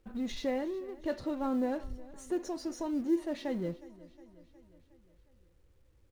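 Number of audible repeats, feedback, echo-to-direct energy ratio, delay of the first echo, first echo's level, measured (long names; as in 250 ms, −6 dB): 4, 59%, −18.0 dB, 362 ms, −20.0 dB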